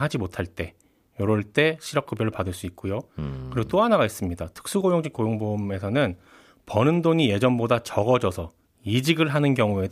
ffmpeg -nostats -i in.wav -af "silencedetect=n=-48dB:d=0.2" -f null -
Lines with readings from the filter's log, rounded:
silence_start: 0.81
silence_end: 1.17 | silence_duration: 0.36
silence_start: 8.50
silence_end: 8.78 | silence_duration: 0.28